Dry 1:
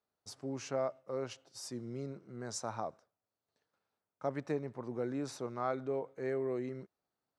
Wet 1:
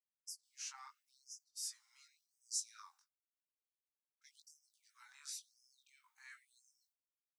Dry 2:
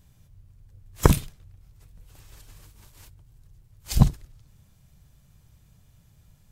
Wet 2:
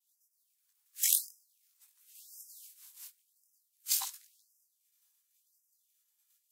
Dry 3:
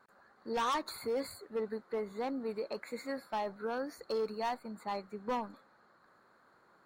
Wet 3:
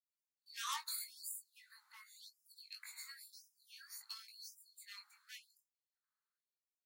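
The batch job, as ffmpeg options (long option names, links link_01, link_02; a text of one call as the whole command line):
ffmpeg -i in.wav -af "equalizer=frequency=550:width_type=o:width=0.78:gain=10.5,agate=range=-33dB:threshold=-47dB:ratio=3:detection=peak,aderivative,flanger=delay=18.5:depth=3.3:speed=0.46,afftfilt=real='re*gte(b*sr/1024,770*pow(5000/770,0.5+0.5*sin(2*PI*0.93*pts/sr)))':imag='im*gte(b*sr/1024,770*pow(5000/770,0.5+0.5*sin(2*PI*0.93*pts/sr)))':win_size=1024:overlap=0.75,volume=7.5dB" out.wav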